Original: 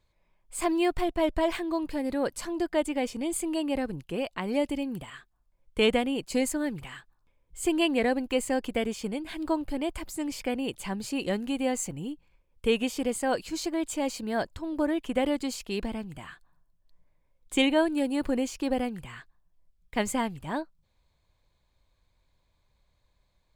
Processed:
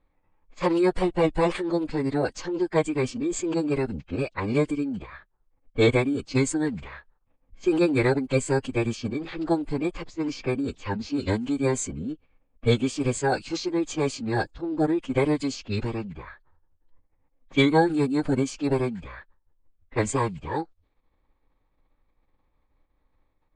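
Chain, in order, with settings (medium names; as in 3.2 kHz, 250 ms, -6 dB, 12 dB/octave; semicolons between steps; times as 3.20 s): level-controlled noise filter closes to 1.8 kHz, open at -25.5 dBFS; formant-preserving pitch shift -11.5 st; trim +4.5 dB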